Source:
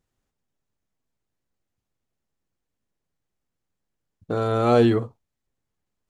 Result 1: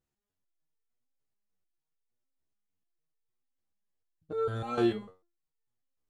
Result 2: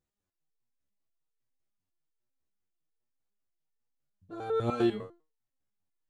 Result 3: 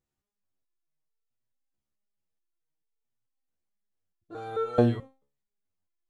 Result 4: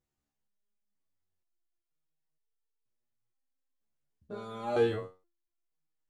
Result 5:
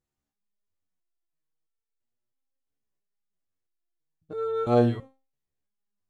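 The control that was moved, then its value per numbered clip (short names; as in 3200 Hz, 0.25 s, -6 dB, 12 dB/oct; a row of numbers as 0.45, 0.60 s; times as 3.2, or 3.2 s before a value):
stepped resonator, rate: 6.7, 10, 4.6, 2.1, 3 Hz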